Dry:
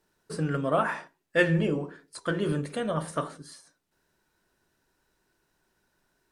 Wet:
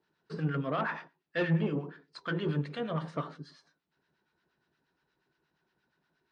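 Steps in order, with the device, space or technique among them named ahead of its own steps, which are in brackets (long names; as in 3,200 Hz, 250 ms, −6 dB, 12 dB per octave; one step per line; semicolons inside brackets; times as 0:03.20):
guitar amplifier with harmonic tremolo (two-band tremolo in antiphase 8.5 Hz, depth 70%, crossover 960 Hz; soft clipping −22.5 dBFS, distortion −13 dB; loudspeaker in its box 83–4,600 Hz, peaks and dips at 100 Hz −8 dB, 150 Hz +5 dB, 580 Hz −4 dB)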